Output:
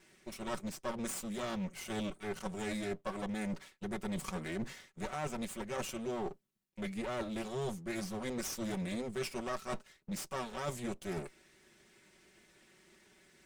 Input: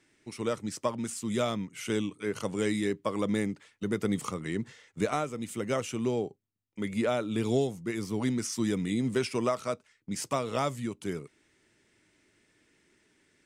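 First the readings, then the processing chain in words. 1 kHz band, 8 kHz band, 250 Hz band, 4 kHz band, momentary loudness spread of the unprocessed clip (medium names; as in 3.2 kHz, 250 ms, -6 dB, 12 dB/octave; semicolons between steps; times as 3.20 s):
-6.0 dB, -5.0 dB, -8.5 dB, -5.5 dB, 8 LU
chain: comb filter that takes the minimum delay 5.3 ms; reverse; compression 6:1, threshold -41 dBFS, peak gain reduction 16.5 dB; reverse; trim +5 dB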